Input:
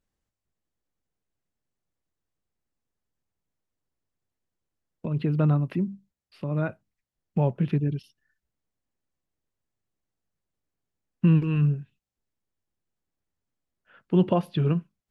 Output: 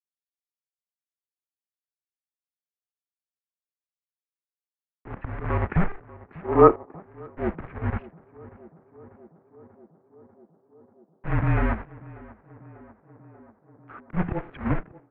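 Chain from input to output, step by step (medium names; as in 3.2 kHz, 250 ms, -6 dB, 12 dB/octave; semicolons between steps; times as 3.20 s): distance through air 91 m; slow attack 272 ms; companded quantiser 4-bit; mistuned SSB -190 Hz 220–2200 Hz; tape echo 591 ms, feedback 89%, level -17 dB, low-pass 1.3 kHz; level rider gain up to 14 dB; time-frequency box 6.45–7.01 s, 240–1300 Hz +10 dB; trim -3 dB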